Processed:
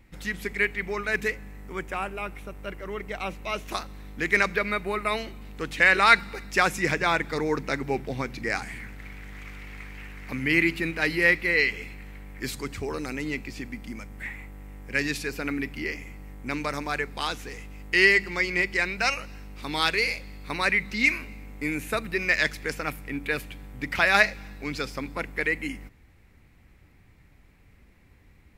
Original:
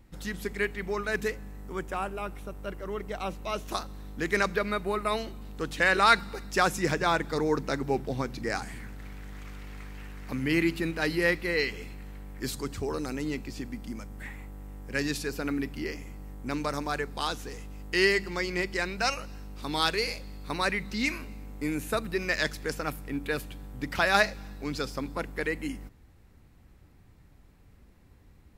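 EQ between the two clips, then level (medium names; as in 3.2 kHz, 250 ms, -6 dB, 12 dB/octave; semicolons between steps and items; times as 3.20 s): peaking EQ 2.2 kHz +10 dB 0.7 oct; 0.0 dB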